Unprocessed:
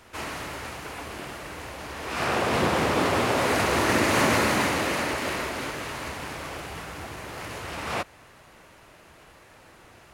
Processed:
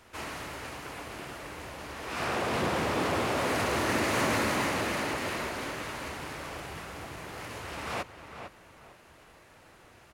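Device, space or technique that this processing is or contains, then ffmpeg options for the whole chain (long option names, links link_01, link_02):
parallel distortion: -filter_complex "[0:a]asplit=2[link_01][link_02];[link_02]adelay=453,lowpass=frequency=2900:poles=1,volume=-9dB,asplit=2[link_03][link_04];[link_04]adelay=453,lowpass=frequency=2900:poles=1,volume=0.28,asplit=2[link_05][link_06];[link_06]adelay=453,lowpass=frequency=2900:poles=1,volume=0.28[link_07];[link_01][link_03][link_05][link_07]amix=inputs=4:normalize=0,asplit=2[link_08][link_09];[link_09]asoftclip=type=hard:threshold=-25.5dB,volume=-6dB[link_10];[link_08][link_10]amix=inputs=2:normalize=0,volume=-8dB"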